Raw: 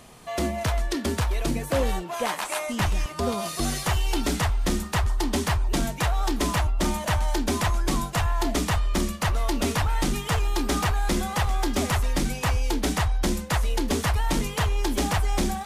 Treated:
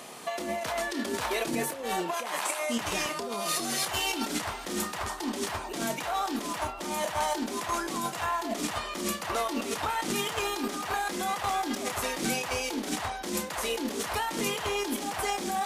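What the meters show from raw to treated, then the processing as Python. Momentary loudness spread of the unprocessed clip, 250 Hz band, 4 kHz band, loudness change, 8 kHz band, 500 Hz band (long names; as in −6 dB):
2 LU, −6.0 dB, −2.0 dB, −4.5 dB, −1.5 dB, −3.0 dB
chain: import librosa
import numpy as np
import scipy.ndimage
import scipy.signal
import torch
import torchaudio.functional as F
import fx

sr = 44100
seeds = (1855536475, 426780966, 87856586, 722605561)

y = scipy.signal.sosfilt(scipy.signal.butter(2, 290.0, 'highpass', fs=sr, output='sos'), x)
y = fx.over_compress(y, sr, threshold_db=-34.0, ratio=-1.0)
y = fx.doubler(y, sr, ms=30.0, db=-10.5)
y = y * 10.0 ** (2.0 / 20.0)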